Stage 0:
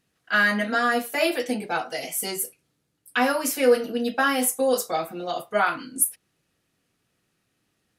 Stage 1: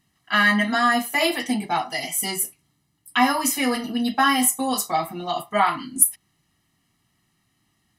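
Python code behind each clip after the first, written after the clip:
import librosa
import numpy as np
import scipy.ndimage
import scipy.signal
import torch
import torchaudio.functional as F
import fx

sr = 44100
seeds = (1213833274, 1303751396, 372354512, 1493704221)

y = x + 0.83 * np.pad(x, (int(1.0 * sr / 1000.0), 0))[:len(x)]
y = y * 10.0 ** (2.0 / 20.0)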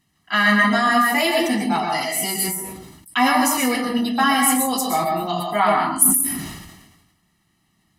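y = fx.rev_plate(x, sr, seeds[0], rt60_s=0.55, hf_ratio=0.45, predelay_ms=105, drr_db=1.5)
y = fx.sustainer(y, sr, db_per_s=47.0)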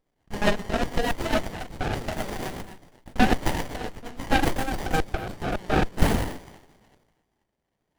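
y = fx.filter_lfo_highpass(x, sr, shape='square', hz=3.6, low_hz=860.0, high_hz=4400.0, q=2.8)
y = fx.rotary_switch(y, sr, hz=8.0, then_hz=0.9, switch_at_s=4.9)
y = fx.running_max(y, sr, window=33)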